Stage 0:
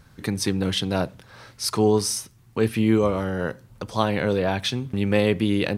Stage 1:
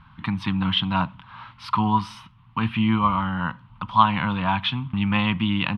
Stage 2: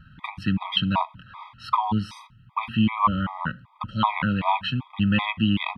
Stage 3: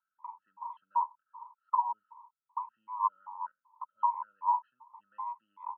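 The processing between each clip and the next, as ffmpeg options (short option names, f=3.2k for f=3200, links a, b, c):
-af "firequalizer=gain_entry='entry(110,0);entry(170,4);entry(260,-2);entry(420,-24);entry(980,14);entry(1700,-1);entry(3000,7);entry(4700,-14);entry(6700,-29)':delay=0.05:min_phase=1"
-af "afftfilt=real='re*gt(sin(2*PI*2.6*pts/sr)*(1-2*mod(floor(b*sr/1024/640),2)),0)':imag='im*gt(sin(2*PI*2.6*pts/sr)*(1-2*mod(floor(b*sr/1024/640),2)),0)':win_size=1024:overlap=0.75,volume=2dB"
-af "asuperpass=centerf=960:order=4:qfactor=6.6,volume=-2.5dB"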